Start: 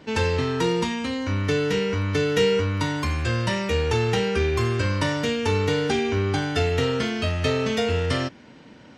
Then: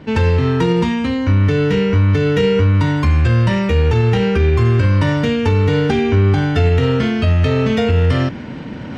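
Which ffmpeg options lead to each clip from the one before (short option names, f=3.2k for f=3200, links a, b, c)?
-af "bass=f=250:g=8,treble=f=4k:g=-10,areverse,acompressor=mode=upward:threshold=-24dB:ratio=2.5,areverse,alimiter=level_in=11dB:limit=-1dB:release=50:level=0:latency=1,volume=-5dB"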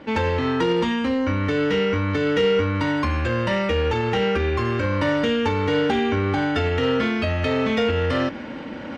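-filter_complex "[0:a]equalizer=f=450:t=o:w=1.1:g=3.5,aecho=1:1:3.6:0.46,asplit=2[a][b];[b]highpass=f=720:p=1,volume=11dB,asoftclip=type=tanh:threshold=-3.5dB[c];[a][c]amix=inputs=2:normalize=0,lowpass=f=3.6k:p=1,volume=-6dB,volume=-6.5dB"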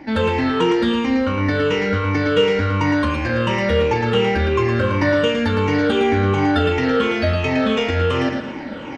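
-af "afftfilt=real='re*pow(10,14/40*sin(2*PI*(0.73*log(max(b,1)*sr/1024/100)/log(2)-(-2.8)*(pts-256)/sr)))':imag='im*pow(10,14/40*sin(2*PI*(0.73*log(max(b,1)*sr/1024/100)/log(2)-(-2.8)*(pts-256)/sr)))':win_size=1024:overlap=0.75,aecho=1:1:112|224|336|448|560:0.531|0.202|0.0767|0.0291|0.0111"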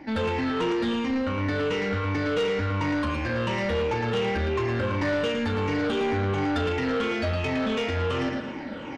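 -af "asoftclip=type=tanh:threshold=-16dB,volume=-5dB"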